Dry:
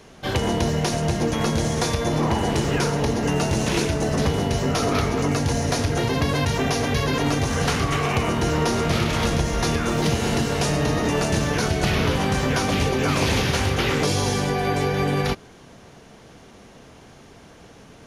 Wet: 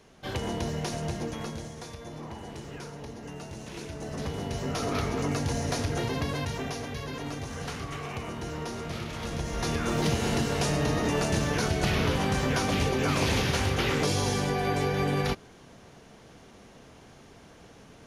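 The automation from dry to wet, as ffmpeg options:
-af "volume=11.5dB,afade=t=out:st=1.07:d=0.67:silence=0.334965,afade=t=in:st=3.72:d=1.4:silence=0.251189,afade=t=out:st=5.95:d=0.97:silence=0.446684,afade=t=in:st=9.21:d=0.74:silence=0.354813"

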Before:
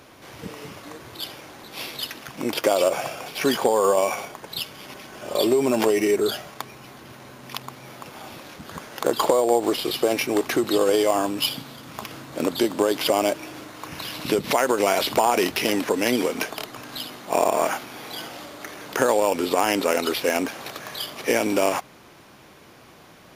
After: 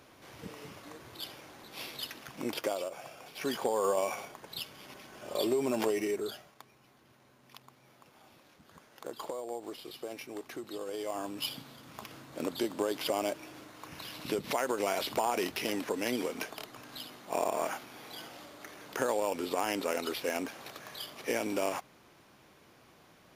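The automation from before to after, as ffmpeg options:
-af "volume=10dB,afade=t=out:st=2.47:d=0.43:silence=0.281838,afade=t=in:st=2.9:d=0.94:silence=0.316228,afade=t=out:st=5.87:d=0.68:silence=0.316228,afade=t=in:st=10.9:d=0.66:silence=0.354813"

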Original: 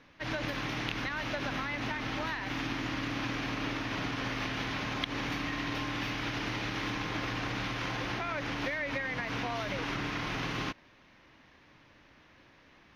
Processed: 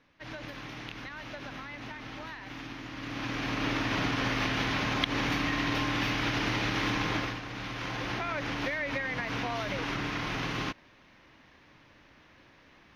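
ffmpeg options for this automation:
-af "volume=12.5dB,afade=t=in:st=2.93:d=0.86:silence=0.251189,afade=t=out:st=7.12:d=0.3:silence=0.281838,afade=t=in:st=7.42:d=0.75:silence=0.421697"

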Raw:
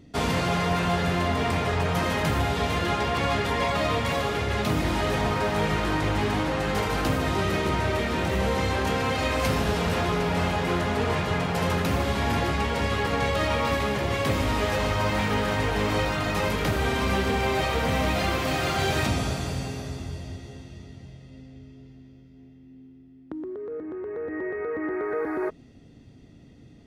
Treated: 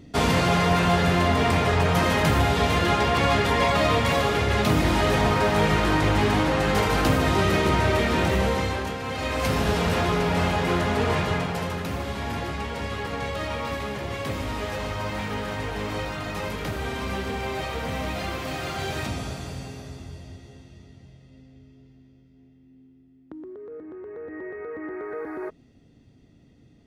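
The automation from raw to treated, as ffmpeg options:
-af "volume=13dB,afade=t=out:st=8.24:d=0.74:silence=0.281838,afade=t=in:st=8.98:d=0.71:silence=0.354813,afade=t=out:st=11.23:d=0.47:silence=0.446684"

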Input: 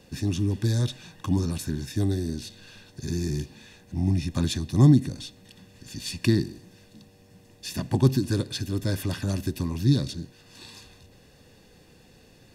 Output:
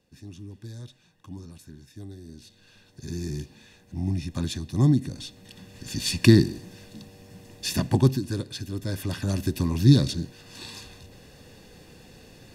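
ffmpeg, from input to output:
-af "volume=15.5dB,afade=t=in:st=2.19:d=1.08:silence=0.237137,afade=t=in:st=5:d=0.94:silence=0.316228,afade=t=out:st=7.69:d=0.5:silence=0.298538,afade=t=in:st=8.86:d=1.07:silence=0.354813"

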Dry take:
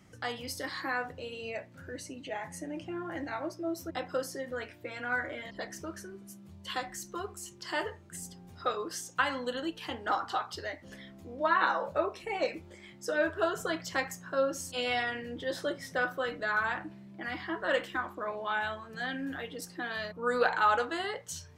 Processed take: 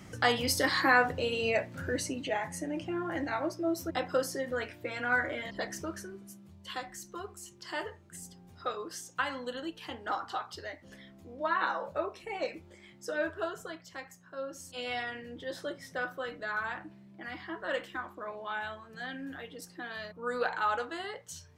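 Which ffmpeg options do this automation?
-af "volume=17dB,afade=t=out:st=1.92:d=0.56:silence=0.501187,afade=t=out:st=5.72:d=0.83:silence=0.446684,afade=t=out:st=13.26:d=0.55:silence=0.375837,afade=t=in:st=14.31:d=0.64:silence=0.421697"

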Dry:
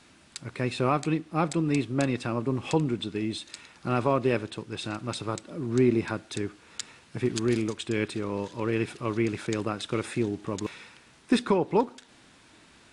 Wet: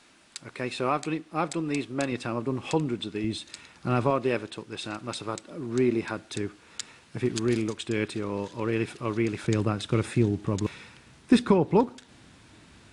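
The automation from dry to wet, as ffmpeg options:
-af "asetnsamples=n=441:p=0,asendcmd='2.12 equalizer g -3.5;3.24 equalizer g 3.5;4.1 equalizer g -6;6.17 equalizer g 0;9.44 equalizer g 10',equalizer=f=86:t=o:w=2.6:g=-10"

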